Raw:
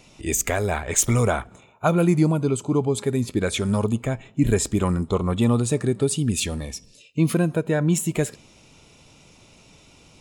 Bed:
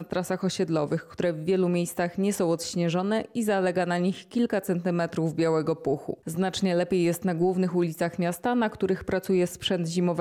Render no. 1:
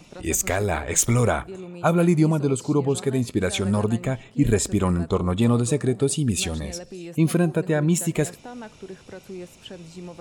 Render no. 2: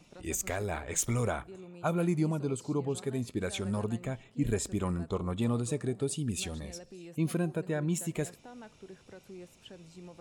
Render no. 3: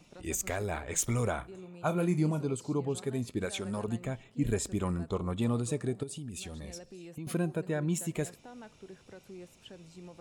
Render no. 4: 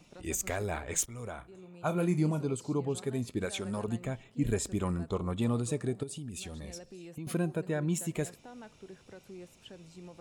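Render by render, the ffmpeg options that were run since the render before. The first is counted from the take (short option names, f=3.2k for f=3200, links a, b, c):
-filter_complex "[1:a]volume=-13.5dB[a];[0:a][a]amix=inputs=2:normalize=0"
-af "volume=-10.5dB"
-filter_complex "[0:a]asettb=1/sr,asplit=3[a][b][c];[a]atrim=end=1.354[d];[b]atrim=start=1.35:end=2.45,asetpts=PTS-STARTPTS,afade=t=in:d=0.004:c=qsin,afade=t=out:st=1.096:d=0.004:c=qsin,asplit=2[e][f];[f]adelay=33,volume=-11dB[g];[e][g]amix=inputs=2:normalize=0,atrim=end_sample=48510[h];[c]atrim=start=2.446[i];[d][h]acrossfade=d=0.004:c1=hsin:c2=qsin[j];[j][i]acrossfade=d=0.004:c1=qsin:c2=hsin,asettb=1/sr,asplit=3[k][l][m];[k]atrim=end=3.454[n];[l]atrim=start=3.45:end=3.88,asetpts=PTS-STARTPTS,afade=t=in:d=0.004:c=qsin,afade=t=out:st=0.426:d=0.004:c=qsin,lowshelf=f=110:g=-12[o];[m]atrim=start=3.876[p];[n][o]acrossfade=d=0.004:c1=hsin:c2=qsin[q];[q][p]acrossfade=d=0.004:c1=qsin:c2=hsin,asettb=1/sr,asplit=3[r][s][t];[r]atrim=end=6.034[u];[s]atrim=start=6.03:end=7.27,asetpts=PTS-STARTPTS,afade=t=in:d=0.004:c=qsin,afade=t=out:st=1.236:d=0.004:c=qsin,acompressor=threshold=-37dB:ratio=6:attack=3.2:release=140:knee=1:detection=peak[v];[t]atrim=start=7.266[w];[u][v]acrossfade=d=0.004:c1=hsin:c2=qsin[x];[x][w]acrossfade=d=0.004:c1=qsin:c2=hsin"
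-filter_complex "[0:a]asplit=2[a][b];[a]atrim=end=1.06,asetpts=PTS-STARTPTS,afade=t=out:st=1.056:d=0.004:c=hsin:silence=0.125893[c];[b]atrim=start=1.06,asetpts=PTS-STARTPTS,afade=t=in:d=0.95:silence=0.125893[d];[c][d]concat=n=2:v=0:a=1"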